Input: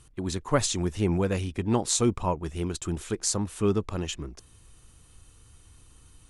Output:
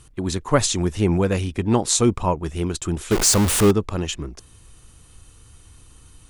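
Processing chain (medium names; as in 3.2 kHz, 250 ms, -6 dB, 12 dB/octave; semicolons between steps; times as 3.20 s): 3.11–3.71 s: jump at every zero crossing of -22 dBFS; trim +6 dB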